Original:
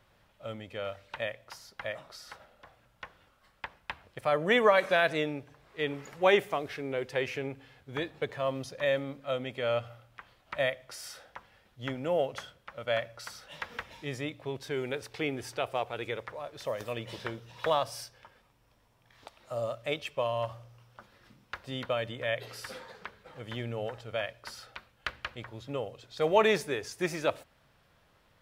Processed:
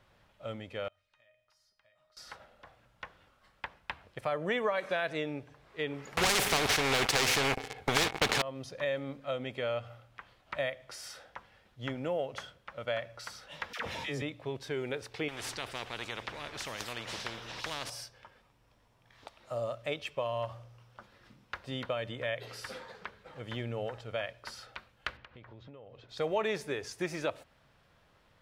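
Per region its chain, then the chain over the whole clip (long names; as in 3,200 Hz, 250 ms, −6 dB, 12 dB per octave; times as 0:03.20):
0:00.88–0:02.17: parametric band 370 Hz −9.5 dB 2.2 octaves + downward compressor 4 to 1, threshold −49 dBFS + tuned comb filter 620 Hz, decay 0.47 s, mix 90%
0:06.17–0:08.42: leveller curve on the samples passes 5 + hollow resonant body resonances 440/770/2,200 Hz, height 12 dB, ringing for 35 ms + every bin compressed towards the loudest bin 4 to 1
0:13.73–0:14.22: high-pass filter 85 Hz + all-pass dispersion lows, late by 65 ms, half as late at 860 Hz + envelope flattener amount 70%
0:15.28–0:17.90: high-shelf EQ 8,100 Hz −11 dB + every bin compressed towards the loudest bin 4 to 1
0:25.17–0:26.09: downward compressor 12 to 1, threshold −46 dBFS + high-frequency loss of the air 200 metres
whole clip: high-shelf EQ 12,000 Hz −10 dB; downward compressor 2.5 to 1, threshold −31 dBFS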